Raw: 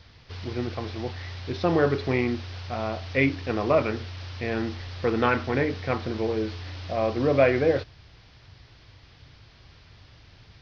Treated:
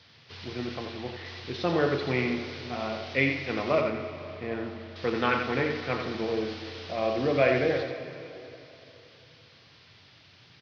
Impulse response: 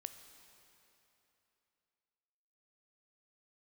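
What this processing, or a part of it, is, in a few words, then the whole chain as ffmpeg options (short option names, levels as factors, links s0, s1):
PA in a hall: -filter_complex "[0:a]asettb=1/sr,asplit=3[s0][s1][s2];[s0]atrim=end=0.864[s3];[s1]atrim=start=0.86:end=1.26,asetpts=PTS-STARTPTS,afade=t=in:d=0.004:c=qsin,afade=t=out:st=0.396:d=0.004:c=qsin,acrossover=split=3900[s4][s5];[s5]acompressor=threshold=0.00158:ratio=4:attack=1:release=60[s6];[s4][s6]amix=inputs=2:normalize=0[s7];[s2]atrim=start=1.256[s8];[s3][s7]acrossfade=d=0.004:c1=hsin:c2=qsin[s9];[s9][s8]acrossfade=d=0.004:c1=qsin:c2=hsin,asettb=1/sr,asplit=3[s10][s11][s12];[s10]atrim=end=3.814[s13];[s11]atrim=start=3.81:end=4.96,asetpts=PTS-STARTPTS,afade=t=in:d=0.004:c=qsin,afade=t=out:st=1.146:d=0.004:c=qsin,lowpass=f=1000:p=1[s14];[s12]atrim=start=4.956[s15];[s13][s14]acrossfade=d=0.004:c1=hsin:c2=qsin[s16];[s16][s15]acrossfade=d=0.004:c1=qsin:c2=hsin,highpass=f=110:w=0.5412,highpass=f=110:w=1.3066,equalizer=f=3300:t=o:w=1.7:g=5.5,aecho=1:1:87:0.473[s17];[1:a]atrim=start_sample=2205[s18];[s17][s18]afir=irnorm=-1:irlink=0"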